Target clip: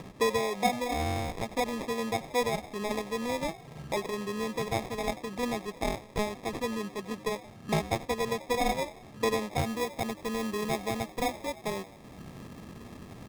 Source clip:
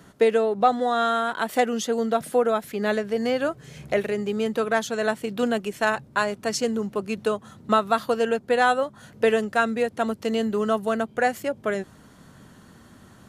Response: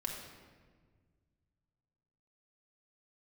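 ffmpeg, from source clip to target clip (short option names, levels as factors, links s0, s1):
-filter_complex "[0:a]acompressor=mode=upward:threshold=0.0562:ratio=2.5,asplit=6[s0][s1][s2][s3][s4][s5];[s1]adelay=88,afreqshift=87,volume=0.141[s6];[s2]adelay=176,afreqshift=174,volume=0.075[s7];[s3]adelay=264,afreqshift=261,volume=0.0398[s8];[s4]adelay=352,afreqshift=348,volume=0.0211[s9];[s5]adelay=440,afreqshift=435,volume=0.0111[s10];[s0][s6][s7][s8][s9][s10]amix=inputs=6:normalize=0,acrusher=samples=30:mix=1:aa=0.000001,asetnsamples=n=441:p=0,asendcmd='9.59 highshelf g -2',highshelf=f=12000:g=-8.5,volume=0.398"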